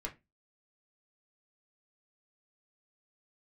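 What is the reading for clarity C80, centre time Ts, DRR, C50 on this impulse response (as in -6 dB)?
24.5 dB, 11 ms, -1.0 dB, 16.0 dB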